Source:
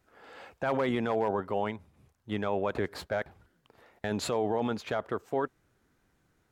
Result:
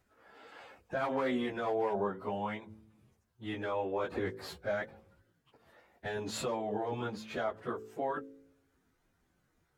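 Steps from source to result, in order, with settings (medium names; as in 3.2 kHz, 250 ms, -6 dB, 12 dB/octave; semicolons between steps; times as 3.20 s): de-hum 54.47 Hz, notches 10; plain phase-vocoder stretch 1.5×; trim -1 dB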